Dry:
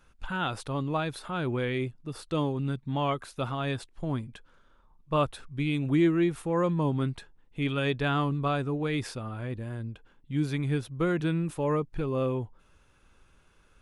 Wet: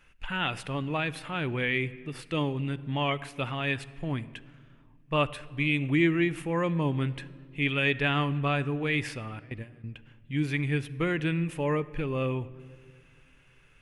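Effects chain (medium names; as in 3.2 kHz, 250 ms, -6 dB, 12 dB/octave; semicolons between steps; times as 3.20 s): 9.39–9.84 s: gate with hold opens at -26 dBFS; high-order bell 2.3 kHz +10.5 dB 1 oct; simulated room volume 3200 m³, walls mixed, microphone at 0.37 m; trim -1.5 dB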